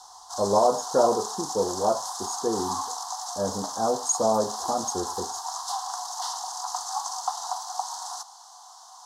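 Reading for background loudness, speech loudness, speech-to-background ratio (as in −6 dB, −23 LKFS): −32.0 LKFS, −26.5 LKFS, 5.5 dB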